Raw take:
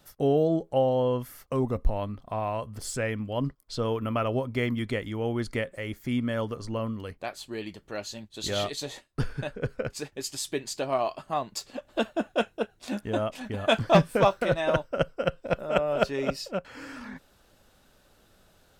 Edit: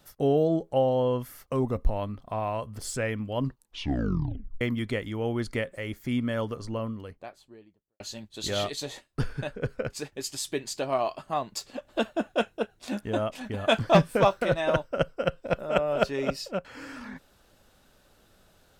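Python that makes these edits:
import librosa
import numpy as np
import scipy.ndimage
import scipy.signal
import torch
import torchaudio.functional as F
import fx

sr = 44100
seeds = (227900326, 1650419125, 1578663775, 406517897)

y = fx.studio_fade_out(x, sr, start_s=6.49, length_s=1.51)
y = fx.edit(y, sr, fx.tape_stop(start_s=3.42, length_s=1.19), tone=tone)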